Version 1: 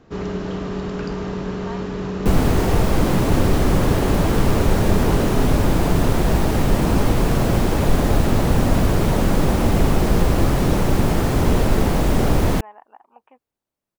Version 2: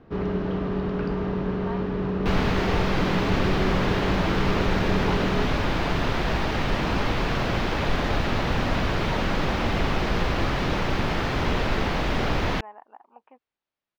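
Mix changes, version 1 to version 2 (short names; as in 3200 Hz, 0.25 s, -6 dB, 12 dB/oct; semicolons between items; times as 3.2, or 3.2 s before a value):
second sound: add tilt shelf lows -9 dB, about 1100 Hz; master: add air absorption 260 m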